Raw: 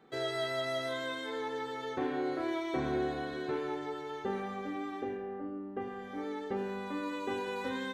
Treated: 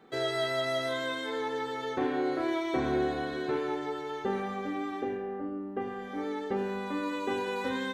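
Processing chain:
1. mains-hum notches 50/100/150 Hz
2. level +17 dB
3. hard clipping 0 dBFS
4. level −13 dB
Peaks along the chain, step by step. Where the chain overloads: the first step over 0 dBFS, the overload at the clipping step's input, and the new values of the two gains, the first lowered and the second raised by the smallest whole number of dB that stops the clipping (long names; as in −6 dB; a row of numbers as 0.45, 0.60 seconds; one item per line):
−22.0, −5.0, −5.0, −18.0 dBFS
no step passes full scale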